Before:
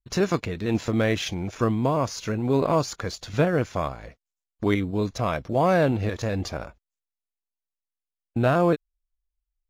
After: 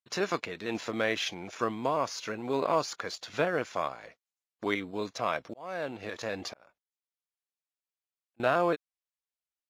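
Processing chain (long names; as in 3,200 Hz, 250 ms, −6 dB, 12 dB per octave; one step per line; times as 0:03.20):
meter weighting curve A
0:05.45–0:08.40: volume swells 738 ms
dynamic equaliser 7,700 Hz, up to −3 dB, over −46 dBFS, Q 1.2
level −2.5 dB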